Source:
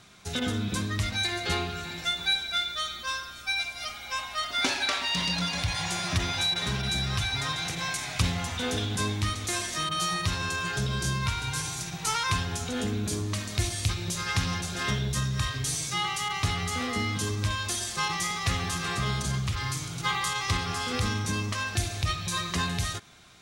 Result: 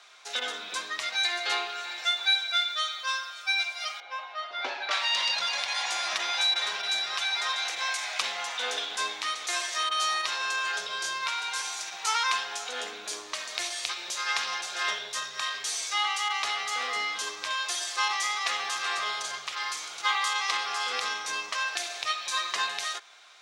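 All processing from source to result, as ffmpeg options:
-filter_complex "[0:a]asettb=1/sr,asplit=3[s0][s1][s2];[s0]atrim=end=4.004[s3];[s1]atrim=start=4:end=4.91,asetpts=PTS-STARTPTS,afade=t=in:d=0.004:c=qsin,afade=t=out:st=0.906:d=0.004:c=qsin,highpass=290,lowpass=3800,tiltshelf=f=660:g=9.5[s4];[s2]atrim=start=4.906[s5];[s3][s4]acrossfade=d=0.004:c1=hsin:c2=qsin[s6];[s6][s5]acrossfade=d=0.004:c1=qsin:c2=hsin,highpass=390,acrossover=split=500 7300:gain=0.0631 1 0.224[s7][s8][s9];[s7][s8][s9]amix=inputs=3:normalize=0,volume=1.33"

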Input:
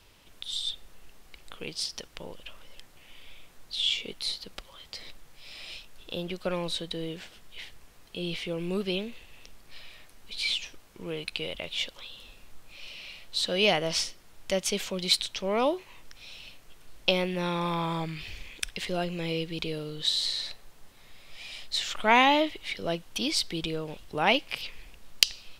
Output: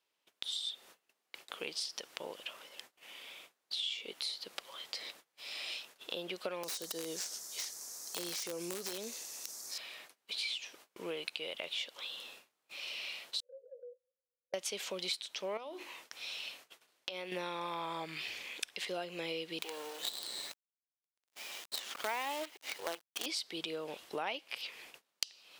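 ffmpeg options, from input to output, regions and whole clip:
-filter_complex "[0:a]asettb=1/sr,asplit=3[s0][s1][s2];[s0]atrim=end=6.634[s3];[s1]atrim=start=6.63:end=9.78,asetpts=PTS-STARTPTS,afade=t=in:d=0.004:c=qsin,afade=t=out:st=3.146:d=0.004:c=qsin,highshelf=f=4200:t=q:w=3:g=13,acompressor=threshold=0.0282:ratio=8:attack=3.2:release=140:knee=1:detection=peak,aeval=exprs='(mod(23.7*val(0)+1,2)-1)/23.7':c=same[s4];[s2]atrim=start=9.776[s5];[s3][s4]acrossfade=d=0.004:c1=hsin:c2=qsin[s6];[s6][s5]acrossfade=d=0.004:c1=qsin:c2=hsin,asettb=1/sr,asplit=3[s7][s8][s9];[s7]atrim=end=13.404[s10];[s8]atrim=start=13.4:end=14.54,asetpts=PTS-STARTPTS,afade=t=in:d=0.004:c=qsin,afade=t=out:st=1.136:d=0.004:c=qsin,asuperpass=centerf=510:order=8:qfactor=7.7,acompressor=threshold=0.00112:ratio=2:attack=3.2:release=140:knee=1:detection=peak[s11];[s9]atrim=start=14.536[s12];[s10][s11]acrossfade=d=0.004:c1=hsin:c2=qsin[s13];[s13][s12]acrossfade=d=0.004:c1=qsin:c2=hsin,asettb=1/sr,asplit=3[s14][s15][s16];[s14]atrim=end=15.574[s17];[s15]atrim=start=15.57:end=17.32,asetpts=PTS-STARTPTS,afade=t=in:d=0.004:c=qsin,afade=t=out:st=1.746:d=0.004:c=qsin,equalizer=f=3200:w=0.48:g=2,bandreject=f=50:t=h:w=6,bandreject=f=100:t=h:w=6,bandreject=f=150:t=h:w=6,bandreject=f=200:t=h:w=6,bandreject=f=250:t=h:w=6,bandreject=f=300:t=h:w=6,bandreject=f=350:t=h:w=6,bandreject=f=400:t=h:w=6,acompressor=threshold=0.0141:ratio=5:attack=3.2:release=140:knee=1:detection=peak[s18];[s16]atrim=start=17.316[s19];[s17][s18]acrossfade=d=0.004:c1=hsin:c2=qsin[s20];[s20][s19]acrossfade=d=0.004:c1=qsin:c2=hsin,asettb=1/sr,asplit=3[s21][s22][s23];[s21]atrim=end=19.624[s24];[s22]atrim=start=19.62:end=23.26,asetpts=PTS-STARTPTS,afade=t=in:d=0.004:c=qsin,afade=t=out:st=3.636:d=0.004:c=qsin,highpass=170,bass=f=250:g=-5,treble=f=4000:g=-7,acrusher=bits=5:dc=4:mix=0:aa=0.000001[s25];[s23]atrim=start=23.256[s26];[s24][s25]acrossfade=d=0.004:c1=hsin:c2=qsin[s27];[s27][s26]acrossfade=d=0.004:c1=qsin:c2=hsin,highpass=390,agate=range=0.0562:threshold=0.00158:ratio=16:detection=peak,acompressor=threshold=0.0112:ratio=5,volume=1.33"

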